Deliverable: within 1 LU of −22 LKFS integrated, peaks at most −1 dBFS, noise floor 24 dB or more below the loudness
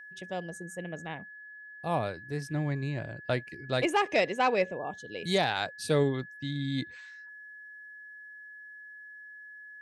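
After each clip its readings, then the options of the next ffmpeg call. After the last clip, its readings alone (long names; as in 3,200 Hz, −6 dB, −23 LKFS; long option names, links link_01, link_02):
interfering tone 1,700 Hz; level of the tone −45 dBFS; integrated loudness −31.5 LKFS; sample peak −14.0 dBFS; target loudness −22.0 LKFS
→ -af "bandreject=frequency=1700:width=30"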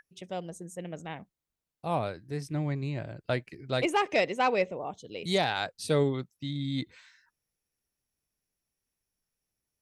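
interfering tone none found; integrated loudness −31.0 LKFS; sample peak −14.0 dBFS; target loudness −22.0 LKFS
→ -af "volume=9dB"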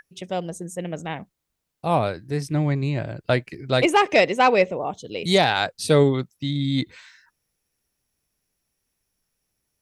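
integrated loudness −22.5 LKFS; sample peak −5.0 dBFS; background noise floor −79 dBFS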